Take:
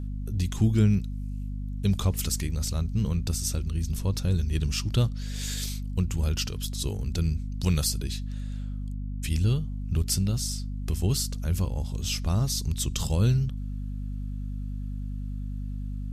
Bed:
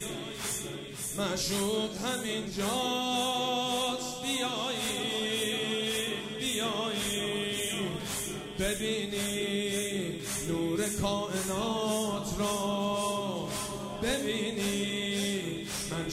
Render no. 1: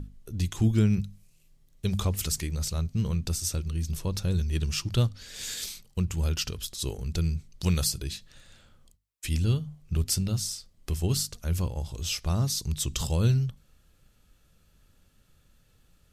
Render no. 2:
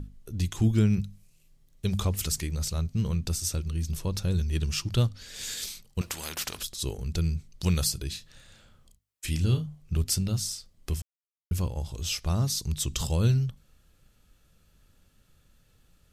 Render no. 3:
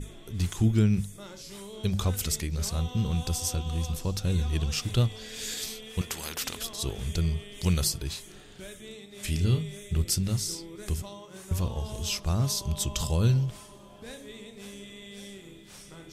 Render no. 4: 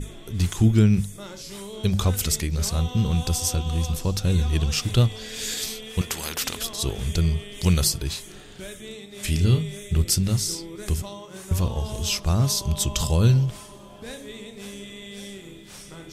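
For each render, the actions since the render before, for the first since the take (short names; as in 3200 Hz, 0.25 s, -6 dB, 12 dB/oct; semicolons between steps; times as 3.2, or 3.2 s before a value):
notches 50/100/150/200/250 Hz
6.01–6.63 spectral compressor 4:1; 8.12–9.66 doubler 32 ms -8 dB; 11.02–11.51 mute
add bed -13 dB
gain +5.5 dB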